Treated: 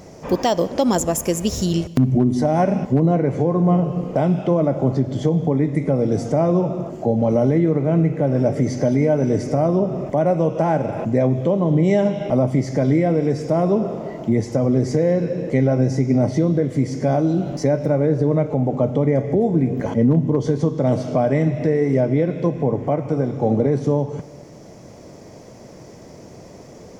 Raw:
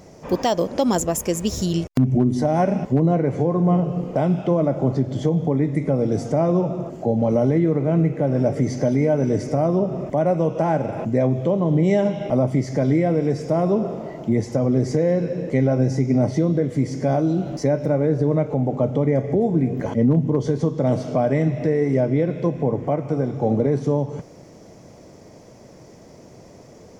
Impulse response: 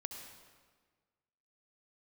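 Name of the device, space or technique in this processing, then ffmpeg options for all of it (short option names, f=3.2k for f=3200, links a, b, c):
ducked reverb: -filter_complex "[0:a]asplit=3[a][b][c];[1:a]atrim=start_sample=2205[d];[b][d]afir=irnorm=-1:irlink=0[e];[c]apad=whole_len=1190271[f];[e][f]sidechaincompress=threshold=-23dB:ratio=8:attack=16:release=1500,volume=-1.5dB[g];[a][g]amix=inputs=2:normalize=0"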